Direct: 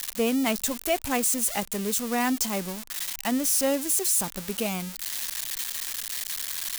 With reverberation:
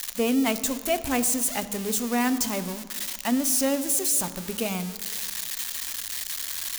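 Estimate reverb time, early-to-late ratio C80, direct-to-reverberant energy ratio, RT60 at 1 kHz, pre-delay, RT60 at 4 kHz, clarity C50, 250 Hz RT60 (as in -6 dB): 1.8 s, 14.5 dB, 11.0 dB, 1.7 s, 3 ms, 1.3 s, 13.5 dB, no reading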